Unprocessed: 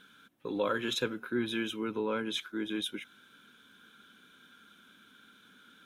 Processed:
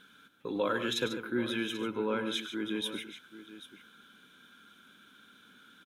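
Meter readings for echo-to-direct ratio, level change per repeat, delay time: -8.0 dB, no regular repeats, 102 ms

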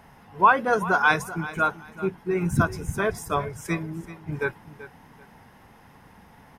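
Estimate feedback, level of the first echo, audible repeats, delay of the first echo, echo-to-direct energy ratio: 24%, -15.5 dB, 2, 384 ms, -15.5 dB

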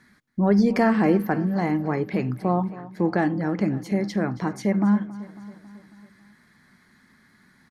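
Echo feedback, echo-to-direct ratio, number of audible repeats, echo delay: 59%, -15.5 dB, 4, 274 ms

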